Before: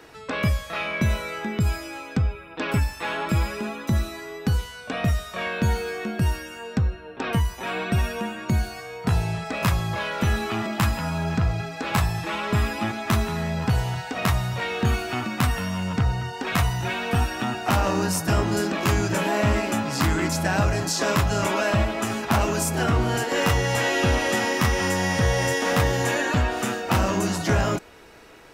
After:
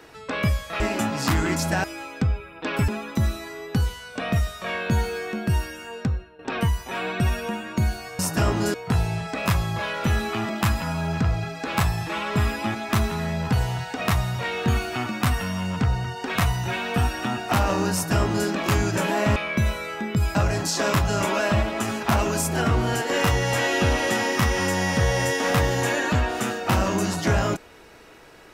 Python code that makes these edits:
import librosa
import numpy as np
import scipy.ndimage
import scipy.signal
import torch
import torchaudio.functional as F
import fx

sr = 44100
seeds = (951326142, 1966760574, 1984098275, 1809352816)

y = fx.edit(x, sr, fx.swap(start_s=0.8, length_s=0.99, other_s=19.53, other_length_s=1.04),
    fx.cut(start_s=2.83, length_s=0.77),
    fx.fade_out_to(start_s=6.69, length_s=0.42, floor_db=-13.5),
    fx.duplicate(start_s=18.1, length_s=0.55, to_s=8.91), tone=tone)